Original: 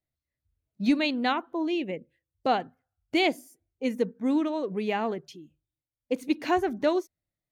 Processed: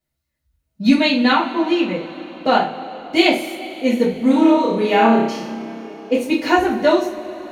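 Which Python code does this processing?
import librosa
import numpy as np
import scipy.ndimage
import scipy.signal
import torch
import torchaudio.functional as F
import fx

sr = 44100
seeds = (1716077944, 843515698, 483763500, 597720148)

y = fx.room_flutter(x, sr, wall_m=5.3, rt60_s=0.63, at=(4.08, 6.16))
y = fx.rev_double_slope(y, sr, seeds[0], early_s=0.32, late_s=4.3, knee_db=-22, drr_db=-7.0)
y = y * 10.0 ** (3.5 / 20.0)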